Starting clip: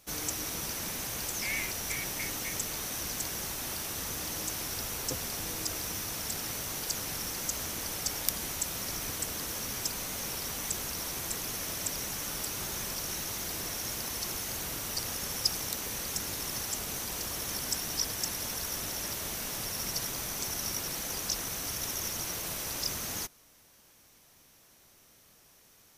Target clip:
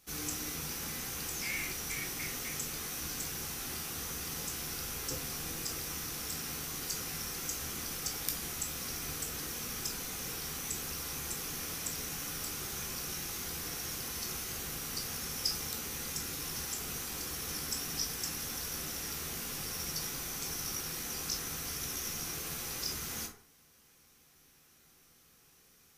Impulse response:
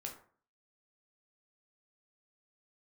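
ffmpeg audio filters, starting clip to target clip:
-filter_complex "[0:a]equalizer=frequency=600:width_type=o:width=0.32:gain=-10,bandreject=frequency=910:width=8,asplit=2[link_01][link_02];[link_02]asoftclip=type=tanh:threshold=-21.5dB,volume=-11.5dB[link_03];[link_01][link_03]amix=inputs=2:normalize=0[link_04];[1:a]atrim=start_sample=2205[link_05];[link_04][link_05]afir=irnorm=-1:irlink=0,volume=-2dB"

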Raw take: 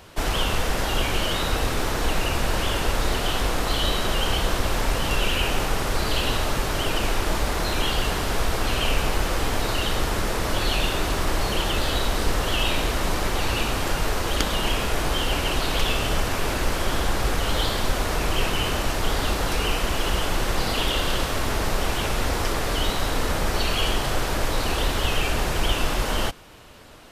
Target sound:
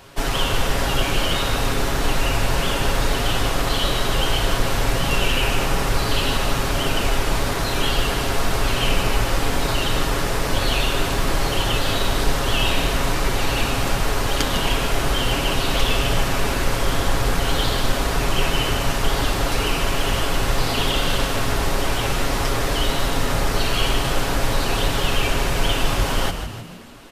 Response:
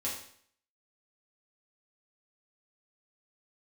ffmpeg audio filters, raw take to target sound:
-filter_complex "[0:a]aecho=1:1:7.3:0.56,asplit=7[link_01][link_02][link_03][link_04][link_05][link_06][link_07];[link_02]adelay=153,afreqshift=-63,volume=-9dB[link_08];[link_03]adelay=306,afreqshift=-126,volume=-14.7dB[link_09];[link_04]adelay=459,afreqshift=-189,volume=-20.4dB[link_10];[link_05]adelay=612,afreqshift=-252,volume=-26dB[link_11];[link_06]adelay=765,afreqshift=-315,volume=-31.7dB[link_12];[link_07]adelay=918,afreqshift=-378,volume=-37.4dB[link_13];[link_01][link_08][link_09][link_10][link_11][link_12][link_13]amix=inputs=7:normalize=0,volume=1dB"

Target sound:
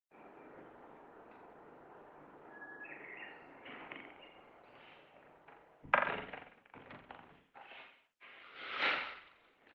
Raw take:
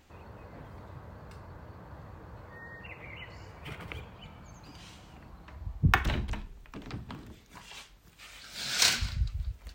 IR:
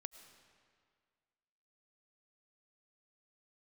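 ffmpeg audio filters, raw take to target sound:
-filter_complex "[0:a]agate=range=-35dB:threshold=-51dB:ratio=16:detection=peak,bandreject=frequency=60:width_type=h:width=6,bandreject=frequency=120:width_type=h:width=6,bandreject=frequency=180:width_type=h:width=6,bandreject=frequency=240:width_type=h:width=6,bandreject=frequency=300:width_type=h:width=6,bandreject=frequency=360:width_type=h:width=6,aeval=exprs='0.668*(cos(1*acos(clip(val(0)/0.668,-1,1)))-cos(1*PI/2))+0.15*(cos(3*acos(clip(val(0)/0.668,-1,1)))-cos(3*PI/2))':channel_layout=same,asoftclip=type=tanh:threshold=-16.5dB,highpass=frequency=410:width_type=q:width=0.5412,highpass=frequency=410:width_type=q:width=1.307,lowpass=frequency=3100:width_type=q:width=0.5176,lowpass=frequency=3100:width_type=q:width=0.7071,lowpass=frequency=3100:width_type=q:width=1.932,afreqshift=-170,bandreject=frequency=1100:width=22,asplit=2[link_01][link_02];[link_02]aecho=0:1:40|84|132.4|185.6|244.2:0.631|0.398|0.251|0.158|0.1[link_03];[link_01][link_03]amix=inputs=2:normalize=0,volume=5.5dB" -ar 48000 -c:a libopus -b:a 16k

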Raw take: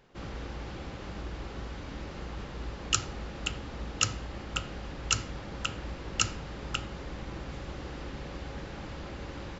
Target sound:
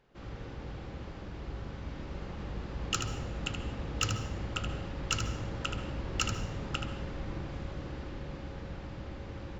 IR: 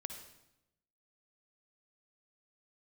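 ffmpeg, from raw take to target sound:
-filter_complex "[0:a]dynaudnorm=framelen=220:gausssize=21:maxgain=11.5dB,highshelf=frequency=6100:gain=-7.5,asoftclip=type=tanh:threshold=-8.5dB,asplit=2[link_01][link_02];[link_02]lowshelf=frequency=380:gain=10.5[link_03];[1:a]atrim=start_sample=2205,adelay=77[link_04];[link_03][link_04]afir=irnorm=-1:irlink=0,volume=-4dB[link_05];[link_01][link_05]amix=inputs=2:normalize=0,volume=-6dB"

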